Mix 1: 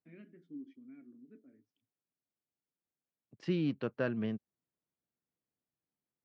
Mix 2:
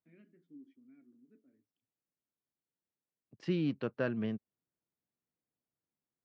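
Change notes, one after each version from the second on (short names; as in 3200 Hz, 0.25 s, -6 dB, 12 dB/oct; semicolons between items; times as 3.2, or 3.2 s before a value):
first voice -7.5 dB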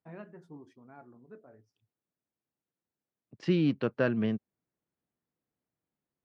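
first voice: remove vowel filter i; second voice +6.0 dB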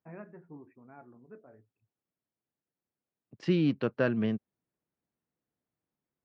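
first voice: add brick-wall FIR low-pass 2700 Hz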